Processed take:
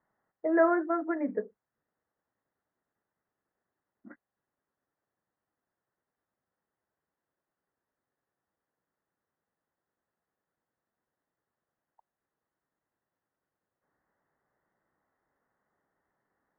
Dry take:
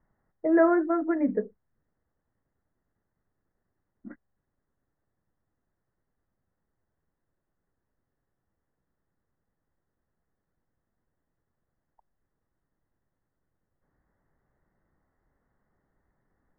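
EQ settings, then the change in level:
high-pass filter 890 Hz 6 dB per octave
high-frequency loss of the air 490 metres
+4.5 dB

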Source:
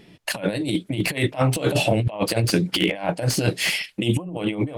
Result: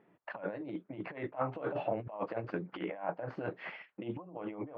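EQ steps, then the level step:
high-pass filter 540 Hz 6 dB per octave
transistor ladder low-pass 1,600 Hz, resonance 30%
−3.5 dB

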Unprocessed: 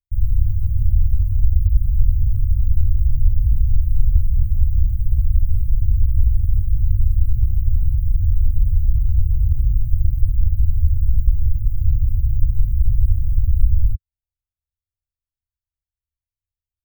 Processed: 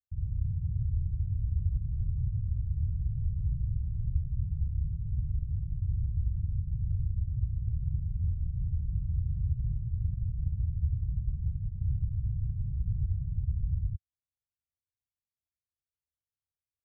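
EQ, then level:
resonant band-pass 160 Hz, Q 1.5
−3.0 dB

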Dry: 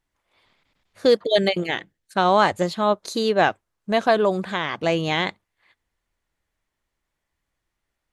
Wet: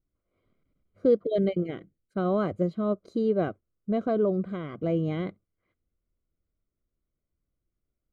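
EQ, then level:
moving average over 50 samples
0.0 dB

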